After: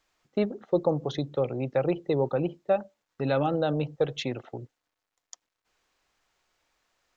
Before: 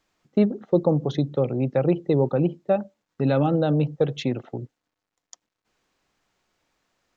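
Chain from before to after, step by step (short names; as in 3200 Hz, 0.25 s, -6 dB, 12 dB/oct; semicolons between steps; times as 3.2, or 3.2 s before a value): bell 190 Hz -9.5 dB 2.1 oct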